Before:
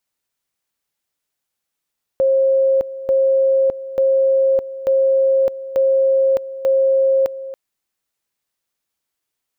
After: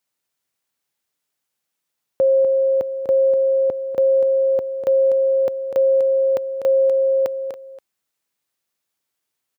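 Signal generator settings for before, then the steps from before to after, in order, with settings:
two-level tone 536 Hz -11.5 dBFS, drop 15 dB, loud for 0.61 s, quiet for 0.28 s, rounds 6
HPF 83 Hz; on a send: echo 0.247 s -8.5 dB

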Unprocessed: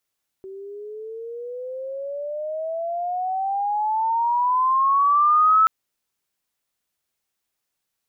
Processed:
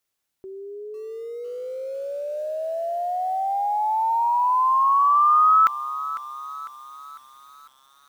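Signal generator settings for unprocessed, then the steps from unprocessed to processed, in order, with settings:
gliding synth tone sine, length 5.23 s, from 380 Hz, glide +21.5 st, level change +22 dB, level -12 dB
dynamic EQ 2100 Hz, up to +5 dB, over -42 dBFS, Q 4.1; lo-fi delay 0.501 s, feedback 55%, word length 7-bit, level -13.5 dB

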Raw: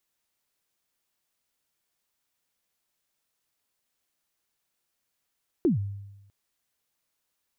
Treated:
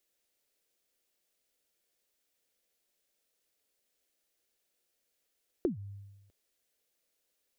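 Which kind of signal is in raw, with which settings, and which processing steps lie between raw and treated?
kick drum length 0.65 s, from 390 Hz, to 100 Hz, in 0.131 s, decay 1.00 s, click off, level -17 dB
compressor 6:1, threshold -32 dBFS; graphic EQ 125/500/1000 Hz -10/+8/-9 dB

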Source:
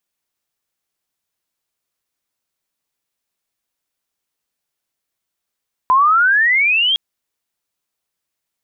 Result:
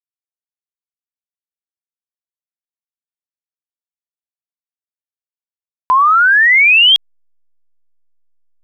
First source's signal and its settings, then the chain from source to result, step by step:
chirp logarithmic 1000 Hz -> 3300 Hz -8.5 dBFS -> -12.5 dBFS 1.06 s
high shelf 2400 Hz +12 dB; backlash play -41.5 dBFS

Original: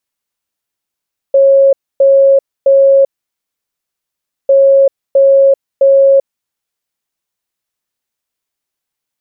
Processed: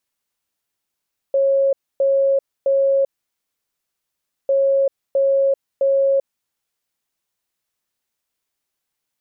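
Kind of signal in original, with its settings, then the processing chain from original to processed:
beep pattern sine 547 Hz, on 0.39 s, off 0.27 s, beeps 3, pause 1.44 s, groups 2, -3.5 dBFS
limiter -13 dBFS

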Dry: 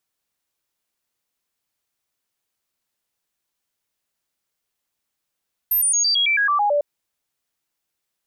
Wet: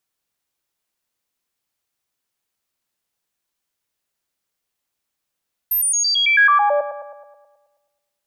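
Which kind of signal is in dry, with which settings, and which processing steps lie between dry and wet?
stepped sine 13200 Hz down, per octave 2, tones 10, 0.11 s, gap 0.00 s -15.5 dBFS
dynamic EQ 1500 Hz, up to +7 dB, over -33 dBFS, Q 1.3; darkening echo 0.107 s, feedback 59%, low-pass 2800 Hz, level -11.5 dB

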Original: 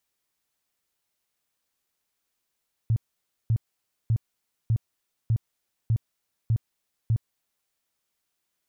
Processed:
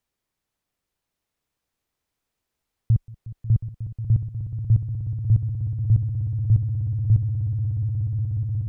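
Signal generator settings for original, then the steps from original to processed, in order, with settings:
tone bursts 113 Hz, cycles 7, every 0.60 s, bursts 8, -18.5 dBFS
tilt -2 dB/oct; swelling echo 0.181 s, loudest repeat 8, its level -12.5 dB

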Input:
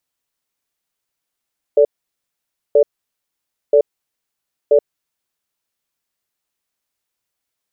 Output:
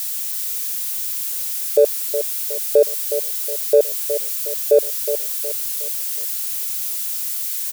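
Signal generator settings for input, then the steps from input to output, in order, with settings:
cadence 440 Hz, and 579 Hz, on 0.08 s, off 0.90 s, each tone -10 dBFS 3.56 s
switching spikes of -21.5 dBFS; feedback echo 0.365 s, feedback 39%, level -10 dB

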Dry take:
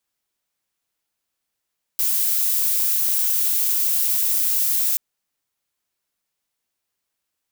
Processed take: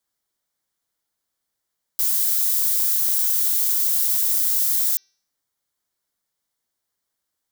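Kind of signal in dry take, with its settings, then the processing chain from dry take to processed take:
noise violet, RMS -20 dBFS 2.98 s
bell 2600 Hz -11.5 dB 0.28 oct; de-hum 388.7 Hz, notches 16

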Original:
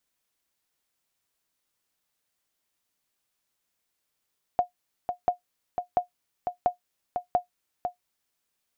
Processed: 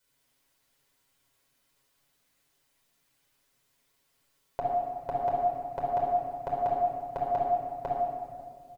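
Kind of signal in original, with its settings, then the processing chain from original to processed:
sonar ping 716 Hz, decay 0.12 s, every 0.69 s, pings 5, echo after 0.50 s, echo -6.5 dB -13 dBFS
comb 7.3 ms, depth 78%; limiter -20.5 dBFS; shoebox room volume 3400 m³, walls mixed, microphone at 4.9 m

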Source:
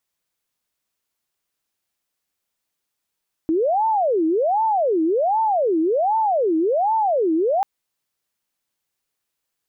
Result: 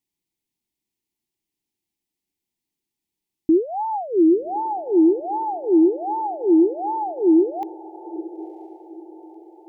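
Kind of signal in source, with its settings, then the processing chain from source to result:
siren wail 316–893 Hz 1.3/s sine -16 dBFS 4.14 s
EQ curve 110 Hz 0 dB, 350 Hz +6 dB, 570 Hz -16 dB, 850 Hz -4 dB, 1400 Hz -25 dB, 2000 Hz -6 dB; diffused feedback echo 0.986 s, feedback 42%, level -16 dB

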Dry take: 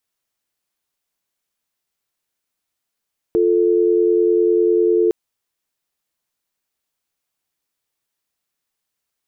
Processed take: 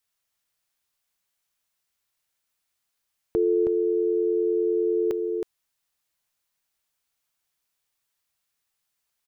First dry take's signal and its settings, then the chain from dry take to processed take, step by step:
call progress tone dial tone, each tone -15 dBFS 1.76 s
bell 320 Hz -7 dB 1.9 oct; echo 0.319 s -6 dB

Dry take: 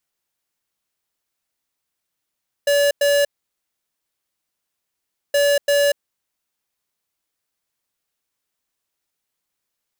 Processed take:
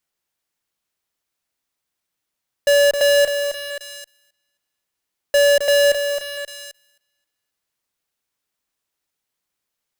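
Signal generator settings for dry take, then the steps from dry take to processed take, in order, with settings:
beep pattern square 572 Hz, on 0.24 s, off 0.10 s, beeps 2, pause 2.09 s, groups 2, -16 dBFS
high shelf 7100 Hz -2.5 dB; thinning echo 0.265 s, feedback 32%, high-pass 750 Hz, level -10 dB; in parallel at -10.5 dB: fuzz box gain 46 dB, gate -54 dBFS

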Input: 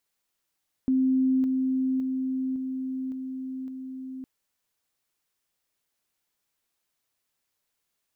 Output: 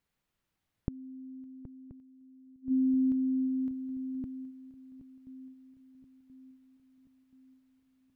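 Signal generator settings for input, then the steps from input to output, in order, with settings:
level ladder 261 Hz -19.5 dBFS, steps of -3 dB, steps 6, 0.56 s 0.00 s
flipped gate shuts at -28 dBFS, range -28 dB; tone controls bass +12 dB, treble -10 dB; swung echo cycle 1.029 s, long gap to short 3:1, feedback 49%, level -15.5 dB

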